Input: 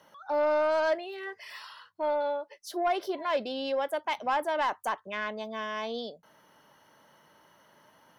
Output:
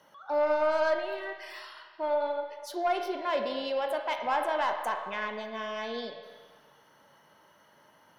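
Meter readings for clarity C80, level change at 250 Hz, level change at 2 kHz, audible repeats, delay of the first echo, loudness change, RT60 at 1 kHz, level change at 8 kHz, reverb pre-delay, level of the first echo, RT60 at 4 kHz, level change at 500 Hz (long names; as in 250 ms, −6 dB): 6.5 dB, −1.5 dB, 0.0 dB, no echo audible, no echo audible, 0.0 dB, 1.6 s, −1.5 dB, 20 ms, no echo audible, 1.5 s, 0.0 dB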